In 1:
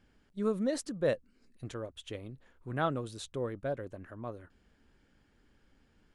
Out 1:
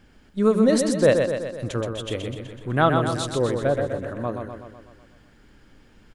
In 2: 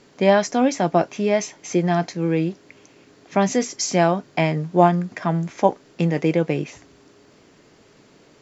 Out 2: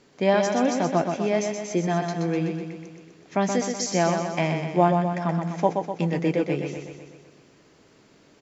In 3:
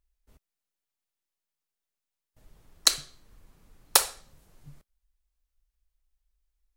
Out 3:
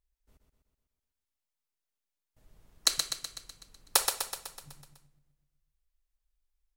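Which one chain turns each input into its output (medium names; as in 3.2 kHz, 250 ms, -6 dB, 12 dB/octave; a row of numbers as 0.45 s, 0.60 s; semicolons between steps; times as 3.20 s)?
feedback delay 125 ms, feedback 58%, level -5.5 dB; peak normalisation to -6 dBFS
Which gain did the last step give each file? +12.0 dB, -5.0 dB, -5.0 dB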